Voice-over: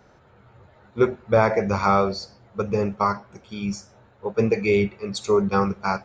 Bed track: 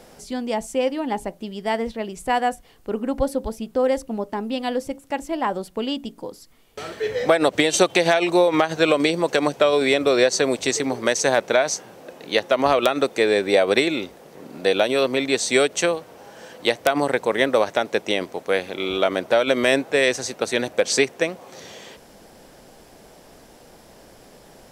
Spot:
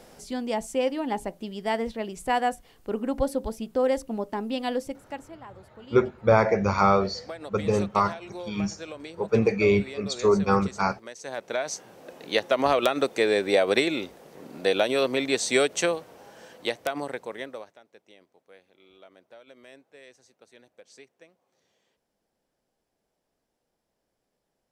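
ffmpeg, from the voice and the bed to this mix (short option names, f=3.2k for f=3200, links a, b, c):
-filter_complex "[0:a]adelay=4950,volume=-1dB[a];[1:a]volume=14dB,afade=t=out:st=4.75:d=0.62:silence=0.125893,afade=t=in:st=11.2:d=0.96:silence=0.133352,afade=t=out:st=15.92:d=1.85:silence=0.0398107[b];[a][b]amix=inputs=2:normalize=0"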